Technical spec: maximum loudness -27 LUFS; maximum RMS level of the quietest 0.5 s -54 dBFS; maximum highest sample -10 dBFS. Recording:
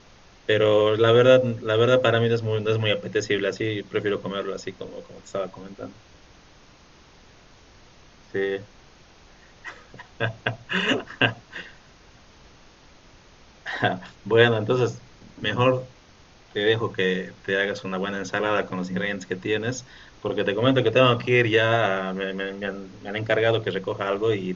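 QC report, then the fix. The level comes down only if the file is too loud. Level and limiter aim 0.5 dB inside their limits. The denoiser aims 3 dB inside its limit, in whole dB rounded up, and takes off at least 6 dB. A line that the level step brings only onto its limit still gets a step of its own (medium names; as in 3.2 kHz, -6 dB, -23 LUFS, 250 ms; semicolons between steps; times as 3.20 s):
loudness -23.5 LUFS: fail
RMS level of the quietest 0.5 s -52 dBFS: fail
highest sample -2.0 dBFS: fail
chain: trim -4 dB; peak limiter -10.5 dBFS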